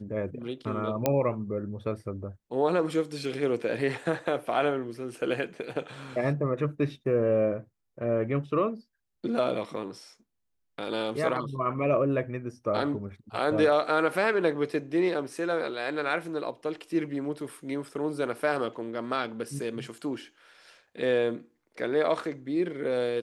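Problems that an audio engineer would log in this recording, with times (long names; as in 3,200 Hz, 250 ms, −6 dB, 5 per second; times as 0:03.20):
0:01.06: click −10 dBFS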